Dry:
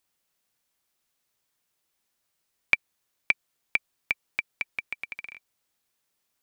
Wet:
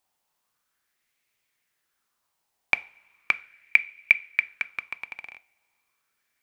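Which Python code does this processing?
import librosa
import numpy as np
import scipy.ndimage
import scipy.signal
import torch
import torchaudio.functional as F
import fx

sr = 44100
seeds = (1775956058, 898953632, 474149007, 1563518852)

y = fx.rev_double_slope(x, sr, seeds[0], early_s=0.39, late_s=2.7, knee_db=-21, drr_db=14.5)
y = fx.bell_lfo(y, sr, hz=0.37, low_hz=790.0, high_hz=2300.0, db=12)
y = y * 10.0 ** (-1.5 / 20.0)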